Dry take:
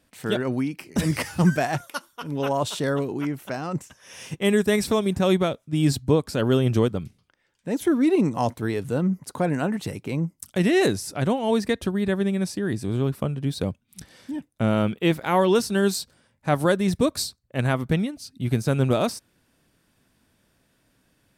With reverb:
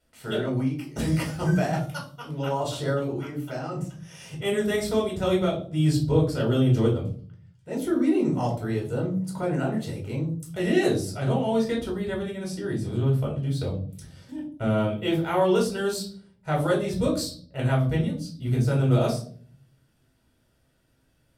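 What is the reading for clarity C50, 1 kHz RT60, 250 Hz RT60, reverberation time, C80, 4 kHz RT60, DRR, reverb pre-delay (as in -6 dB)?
8.5 dB, 0.40 s, 0.85 s, 0.50 s, 12.5 dB, 0.35 s, -3.0 dB, 3 ms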